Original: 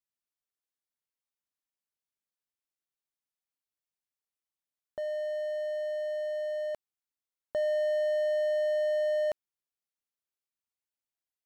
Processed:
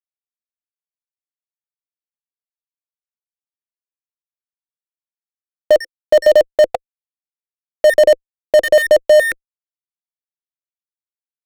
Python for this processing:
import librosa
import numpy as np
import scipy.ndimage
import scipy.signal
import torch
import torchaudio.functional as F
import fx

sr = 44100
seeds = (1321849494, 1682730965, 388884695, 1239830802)

y = fx.spec_dropout(x, sr, seeds[0], share_pct=79)
y = scipy.signal.sosfilt(scipy.signal.butter(4, 150.0, 'highpass', fs=sr, output='sos'), y)
y = fx.env_lowpass(y, sr, base_hz=1100.0, full_db=-29.0)
y = fx.lowpass(y, sr, hz=2300.0, slope=6)
y = fx.hum_notches(y, sr, base_hz=50, count=9)
y = fx.fuzz(y, sr, gain_db=57.0, gate_db=-54.0)
y = fx.small_body(y, sr, hz=(340.0, 510.0), ring_ms=30, db=16)
y = y * 10.0 ** (-3.0 / 20.0)